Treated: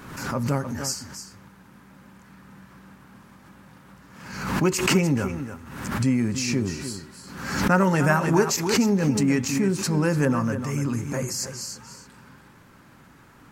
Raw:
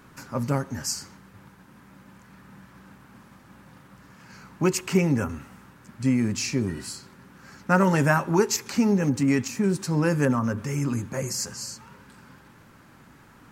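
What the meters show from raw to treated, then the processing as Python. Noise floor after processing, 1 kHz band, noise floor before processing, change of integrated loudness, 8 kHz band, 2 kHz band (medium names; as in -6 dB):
-52 dBFS, +1.5 dB, -53 dBFS, +1.0 dB, +2.0 dB, +2.5 dB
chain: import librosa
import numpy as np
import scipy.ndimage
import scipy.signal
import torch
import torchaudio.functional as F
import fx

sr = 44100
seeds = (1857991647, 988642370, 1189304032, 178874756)

p1 = x + fx.echo_single(x, sr, ms=296, db=-10.5, dry=0)
y = fx.pre_swell(p1, sr, db_per_s=56.0)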